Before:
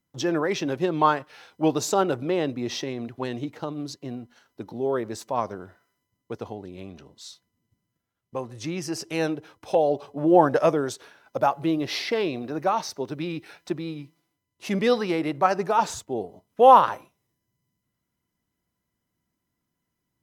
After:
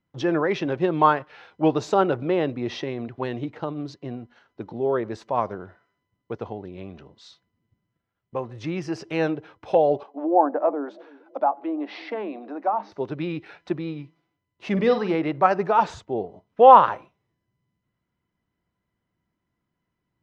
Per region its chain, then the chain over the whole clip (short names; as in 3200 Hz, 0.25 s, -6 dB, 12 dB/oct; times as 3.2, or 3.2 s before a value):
10.03–12.92 analogue delay 0.327 s, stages 1024, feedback 47%, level -21 dB + treble ducked by the level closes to 1200 Hz, closed at -18 dBFS + rippled Chebyshev high-pass 200 Hz, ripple 9 dB
14.72–15.15 dynamic EQ 2300 Hz, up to -4 dB, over -37 dBFS, Q 0.75 + flutter echo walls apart 8.2 m, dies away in 0.3 s
whole clip: LPF 2900 Hz 12 dB/oct; bell 260 Hz -3.5 dB 0.31 oct; gain +2.5 dB